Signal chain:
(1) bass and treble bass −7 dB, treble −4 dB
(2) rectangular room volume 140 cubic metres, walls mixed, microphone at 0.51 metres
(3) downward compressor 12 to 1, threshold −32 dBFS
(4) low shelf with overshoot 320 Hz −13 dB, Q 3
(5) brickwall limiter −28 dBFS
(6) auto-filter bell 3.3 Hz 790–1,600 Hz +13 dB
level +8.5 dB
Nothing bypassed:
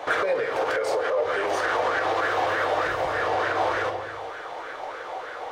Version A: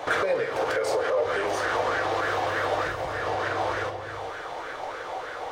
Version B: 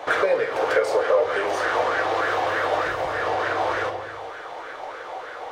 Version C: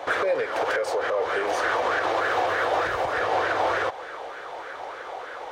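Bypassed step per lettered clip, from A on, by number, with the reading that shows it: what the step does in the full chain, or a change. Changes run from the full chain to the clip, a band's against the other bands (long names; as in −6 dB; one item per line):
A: 1, change in momentary loudness spread −1 LU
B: 5, change in momentary loudness spread +3 LU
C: 2, change in momentary loudness spread +2 LU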